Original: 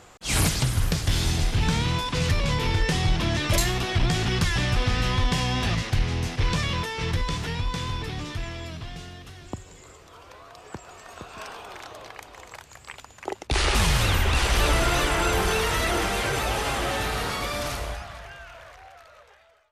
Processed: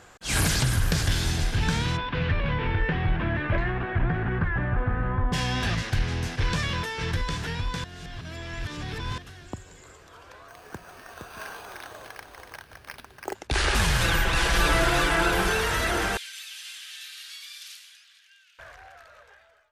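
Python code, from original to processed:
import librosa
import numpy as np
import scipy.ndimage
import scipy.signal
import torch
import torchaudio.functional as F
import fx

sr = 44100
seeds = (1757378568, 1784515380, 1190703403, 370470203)

y = fx.env_flatten(x, sr, amount_pct=50, at=(0.49, 1.13))
y = fx.lowpass(y, sr, hz=fx.line((1.96, 3300.0), (5.32, 1400.0)), slope=24, at=(1.96, 5.32), fade=0.02)
y = fx.resample_bad(y, sr, factor=6, down='none', up='hold', at=(10.48, 13.35))
y = fx.comb(y, sr, ms=6.0, depth=0.65, at=(14.0, 15.49))
y = fx.ladder_highpass(y, sr, hz=2500.0, resonance_pct=30, at=(16.17, 18.59))
y = fx.edit(y, sr, fx.reverse_span(start_s=7.84, length_s=1.34), tone=tone)
y = fx.peak_eq(y, sr, hz=1600.0, db=9.0, octaves=0.22)
y = F.gain(torch.from_numpy(y), -2.0).numpy()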